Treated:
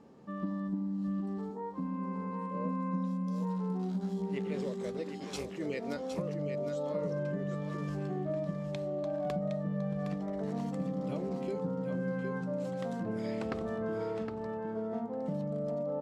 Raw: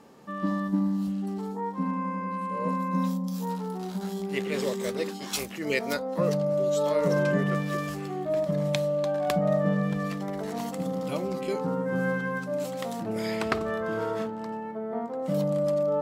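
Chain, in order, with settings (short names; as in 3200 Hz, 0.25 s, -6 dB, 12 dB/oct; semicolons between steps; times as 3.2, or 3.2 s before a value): LPF 7800 Hz 12 dB/oct; tilt shelf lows +5.5 dB, about 670 Hz; compressor, threshold -26 dBFS, peak gain reduction 9.5 dB; on a send: echo 0.763 s -7.5 dB; on the sum: gain -6 dB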